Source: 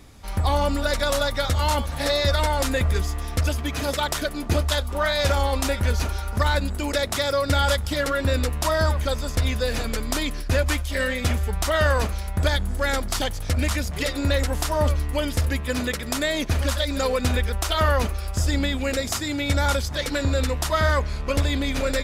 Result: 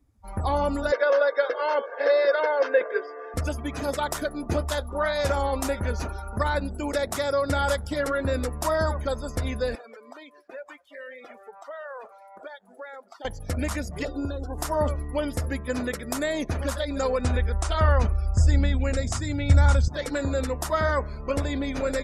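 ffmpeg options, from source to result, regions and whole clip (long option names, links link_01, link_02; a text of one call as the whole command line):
ffmpeg -i in.wav -filter_complex "[0:a]asettb=1/sr,asplit=3[link_01][link_02][link_03];[link_01]atrim=end=0.924[link_04];[link_02]atrim=start=0.92:end=3.34,asetpts=PTS-STARTPTS,afade=type=in:duration=0.004:curve=qsin,afade=type=out:start_time=2.416:duration=0.004:curve=qsin,highpass=frequency=330:width=0.5412,highpass=frequency=330:width=1.3066,equalizer=frequency=470:width_type=q:width=4:gain=9,equalizer=frequency=1000:width_type=q:width=4:gain=-3,equalizer=frequency=1600:width_type=q:width=4:gain=7,equalizer=frequency=3900:width_type=q:width=4:gain=-7,lowpass=frequency=4700:width=0.5412,lowpass=frequency=4700:width=1.3066,aecho=1:1:1.9:0.45,atrim=end_sample=106722[link_05];[link_03]atrim=start=3.336[link_06];[link_04][link_05]acrossfade=duration=0.004:curve1=hsin:curve2=qsin[link_07];[link_07][link_06]acrossfade=duration=0.004:curve1=qsin:curve2=hsin,asettb=1/sr,asplit=3[link_08][link_09][link_10];[link_08]atrim=end=9.754[link_11];[link_09]atrim=start=9.75:end=13.25,asetpts=PTS-STARTPTS,afade=type=in:duration=0.004:curve=qsin,afade=type=out:start_time=3.496:duration=0.004:curve=qsin,highpass=470,acompressor=threshold=-38dB:ratio=2.5:attack=3.2:release=140:knee=1:detection=peak,highshelf=frequency=6500:gain=-8[link_12];[link_10]atrim=start=13.246[link_13];[link_11][link_12]acrossfade=duration=0.004:curve1=hsin:curve2=qsin[link_14];[link_14][link_13]acrossfade=duration=0.004:curve1=qsin:curve2=hsin,asettb=1/sr,asplit=3[link_15][link_16][link_17];[link_15]atrim=end=14.054[link_18];[link_16]atrim=start=14.05:end=14.58,asetpts=PTS-STARTPTS,afade=type=in:duration=0.004:curve=qsin,afade=type=out:start_time=0.526:duration=0.004:curve=qsin,aecho=1:1:2.7:0.43,atrim=end_sample=23373,acrossover=split=900|2100[link_19][link_20][link_21];[link_19]acompressor=threshold=-23dB:ratio=4[link_22];[link_20]acompressor=threshold=-43dB:ratio=4[link_23];[link_21]acompressor=threshold=-41dB:ratio=4[link_24];[link_22][link_23][link_24]amix=inputs=3:normalize=0,asuperstop=centerf=2100:order=4:qfactor=2.2[link_25];[link_17]atrim=start=14.576[link_26];[link_18][link_25]acrossfade=duration=0.004:curve1=hsin:curve2=qsin[link_27];[link_27][link_26]acrossfade=duration=0.004:curve1=qsin:curve2=hsin,asettb=1/sr,asplit=3[link_28][link_29][link_30];[link_28]atrim=end=16.834[link_31];[link_29]atrim=start=16.83:end=19.88,asetpts=PTS-STARTPTS,afade=type=in:duration=0.004:curve=qsin,afade=type=out:start_time=3.046:duration=0.004:curve=qsin,asubboost=boost=8.5:cutoff=140,lowpass=frequency=10000:width=0.5412,lowpass=frequency=10000:width=1.3066,acrusher=bits=8:mix=0:aa=0.5[link_32];[link_30]atrim=start=19.876[link_33];[link_31][link_32]acrossfade=duration=0.004:curve1=hsin:curve2=qsin[link_34];[link_34][link_33]acrossfade=duration=0.004:curve1=qsin:curve2=hsin,lowshelf=frequency=120:gain=-9.5,afftdn=noise_reduction=23:noise_floor=-38,equalizer=frequency=3400:width=0.75:gain=-9.5" out.wav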